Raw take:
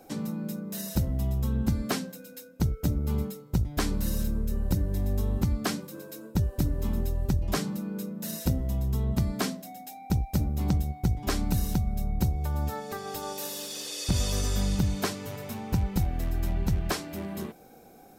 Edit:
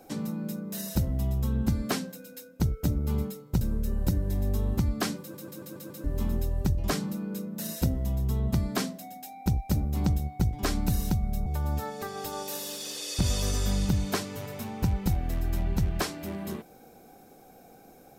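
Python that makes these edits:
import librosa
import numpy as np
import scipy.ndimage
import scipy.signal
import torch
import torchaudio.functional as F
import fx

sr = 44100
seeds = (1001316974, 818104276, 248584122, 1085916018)

y = fx.edit(x, sr, fx.cut(start_s=3.61, length_s=0.64),
    fx.stutter_over(start_s=5.84, slice_s=0.14, count=6),
    fx.cut(start_s=12.1, length_s=0.26), tone=tone)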